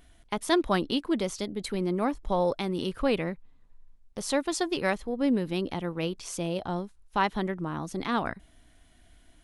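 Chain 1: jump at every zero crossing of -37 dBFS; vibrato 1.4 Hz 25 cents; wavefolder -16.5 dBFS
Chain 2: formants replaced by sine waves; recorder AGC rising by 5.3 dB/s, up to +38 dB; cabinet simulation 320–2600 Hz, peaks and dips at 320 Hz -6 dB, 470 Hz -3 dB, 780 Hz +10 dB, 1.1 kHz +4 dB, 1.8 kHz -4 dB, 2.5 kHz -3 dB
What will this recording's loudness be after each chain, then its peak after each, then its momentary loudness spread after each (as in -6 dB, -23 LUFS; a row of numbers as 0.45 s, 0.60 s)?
-29.0 LUFS, -27.0 LUFS; -16.5 dBFS, -8.5 dBFS; 15 LU, 15 LU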